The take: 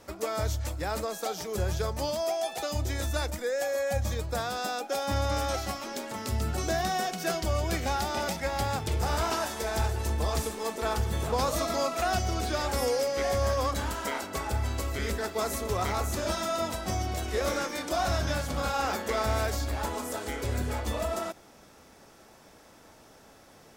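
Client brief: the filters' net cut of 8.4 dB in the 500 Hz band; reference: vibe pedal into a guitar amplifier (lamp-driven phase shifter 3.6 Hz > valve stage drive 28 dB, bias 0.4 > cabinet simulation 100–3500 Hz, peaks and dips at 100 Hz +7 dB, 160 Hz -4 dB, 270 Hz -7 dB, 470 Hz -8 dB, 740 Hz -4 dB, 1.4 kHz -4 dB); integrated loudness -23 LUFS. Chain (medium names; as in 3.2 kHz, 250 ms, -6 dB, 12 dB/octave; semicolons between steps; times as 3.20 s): peaking EQ 500 Hz -5.5 dB; lamp-driven phase shifter 3.6 Hz; valve stage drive 28 dB, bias 0.4; cabinet simulation 100–3500 Hz, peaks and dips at 100 Hz +7 dB, 160 Hz -4 dB, 270 Hz -7 dB, 470 Hz -8 dB, 740 Hz -4 dB, 1.4 kHz -4 dB; trim +18.5 dB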